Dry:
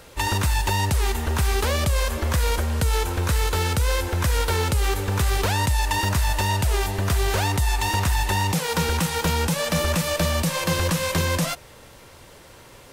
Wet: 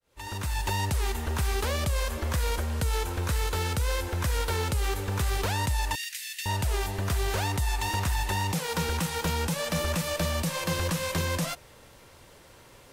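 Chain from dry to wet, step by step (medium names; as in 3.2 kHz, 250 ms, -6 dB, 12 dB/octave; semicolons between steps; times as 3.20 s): fade-in on the opening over 0.69 s; 5.95–6.46 s: steep high-pass 1.9 kHz 48 dB/octave; trim -6 dB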